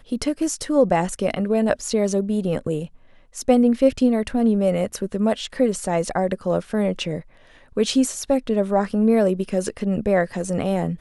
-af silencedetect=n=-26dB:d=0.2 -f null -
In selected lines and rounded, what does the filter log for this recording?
silence_start: 2.85
silence_end: 3.38 | silence_duration: 0.53
silence_start: 7.19
silence_end: 7.77 | silence_duration: 0.58